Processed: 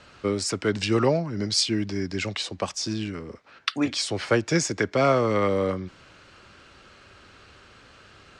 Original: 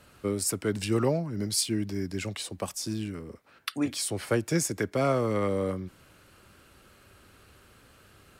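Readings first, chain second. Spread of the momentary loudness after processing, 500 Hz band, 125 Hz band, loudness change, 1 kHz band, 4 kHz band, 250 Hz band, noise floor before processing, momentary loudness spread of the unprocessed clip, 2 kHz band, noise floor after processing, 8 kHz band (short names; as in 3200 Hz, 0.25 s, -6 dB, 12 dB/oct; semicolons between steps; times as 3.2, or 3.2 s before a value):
10 LU, +5.0 dB, +2.5 dB, +4.5 dB, +7.0 dB, +7.5 dB, +3.5 dB, -58 dBFS, 11 LU, +7.5 dB, -53 dBFS, 0.0 dB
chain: LPF 6300 Hz 24 dB/oct; low shelf 500 Hz -6 dB; gain +8 dB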